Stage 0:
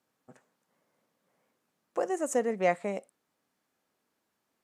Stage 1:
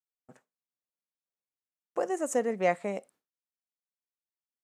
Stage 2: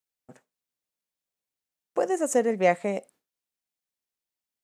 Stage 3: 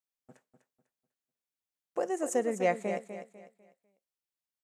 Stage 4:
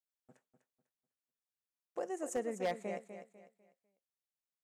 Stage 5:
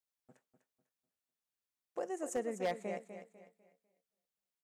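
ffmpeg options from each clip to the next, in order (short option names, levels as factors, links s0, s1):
-af "agate=range=0.0224:threshold=0.00178:ratio=3:detection=peak"
-af "equalizer=f=1200:w=1.5:g=-3.5,volume=1.88"
-af "aecho=1:1:249|498|747|996:0.335|0.107|0.0343|0.011,volume=0.473"
-af "aeval=exprs='0.106*(abs(mod(val(0)/0.106+3,4)-2)-1)':c=same,volume=0.422"
-filter_complex "[0:a]asplit=2[s0][s1];[s1]adelay=260,lowpass=f=3700:p=1,volume=0.0631,asplit=2[s2][s3];[s3]adelay=260,lowpass=f=3700:p=1,volume=0.53,asplit=2[s4][s5];[s5]adelay=260,lowpass=f=3700:p=1,volume=0.53[s6];[s0][s2][s4][s6]amix=inputs=4:normalize=0"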